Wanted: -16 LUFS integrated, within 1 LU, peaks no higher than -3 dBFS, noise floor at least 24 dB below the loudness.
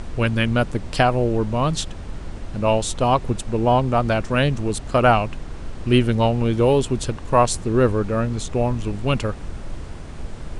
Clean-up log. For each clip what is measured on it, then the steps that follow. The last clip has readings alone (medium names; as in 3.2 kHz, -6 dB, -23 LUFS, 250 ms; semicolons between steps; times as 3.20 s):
noise floor -34 dBFS; noise floor target -45 dBFS; loudness -20.5 LUFS; peak level -2.0 dBFS; loudness target -16.0 LUFS
-> noise print and reduce 11 dB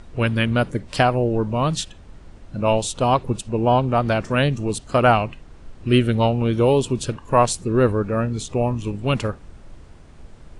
noise floor -44 dBFS; noise floor target -45 dBFS
-> noise print and reduce 6 dB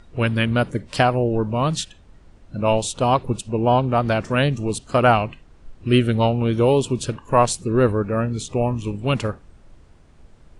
noise floor -50 dBFS; loudness -20.5 LUFS; peak level -2.5 dBFS; loudness target -16.0 LUFS
-> trim +4.5 dB; peak limiter -3 dBFS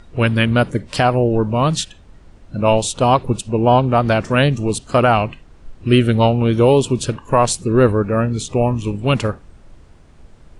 loudness -16.5 LUFS; peak level -3.0 dBFS; noise floor -45 dBFS